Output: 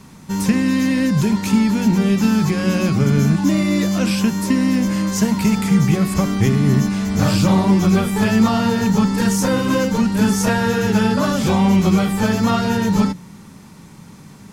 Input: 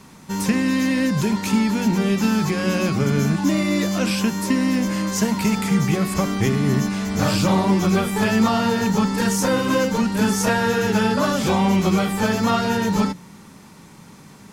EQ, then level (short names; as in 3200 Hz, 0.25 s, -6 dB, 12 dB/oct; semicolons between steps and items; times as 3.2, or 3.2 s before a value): tone controls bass +6 dB, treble +1 dB; 0.0 dB